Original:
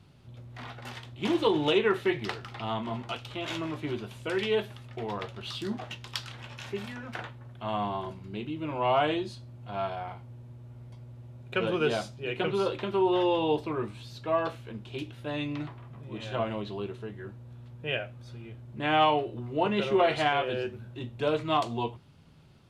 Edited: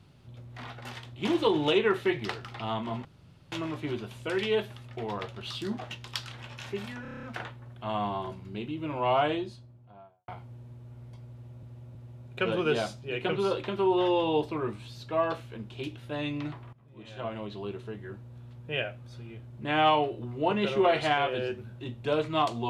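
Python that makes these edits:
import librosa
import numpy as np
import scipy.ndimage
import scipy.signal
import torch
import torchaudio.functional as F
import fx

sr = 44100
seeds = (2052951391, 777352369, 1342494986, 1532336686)

y = fx.studio_fade_out(x, sr, start_s=8.88, length_s=1.19)
y = fx.edit(y, sr, fx.room_tone_fill(start_s=3.05, length_s=0.47),
    fx.stutter(start_s=7.02, slice_s=0.03, count=8),
    fx.repeat(start_s=11.1, length_s=0.32, count=3),
    fx.fade_in_from(start_s=15.88, length_s=1.14, floor_db=-17.0), tone=tone)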